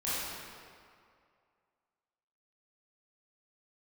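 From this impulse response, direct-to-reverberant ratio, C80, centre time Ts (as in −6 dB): −11.5 dB, −2.0 dB, 156 ms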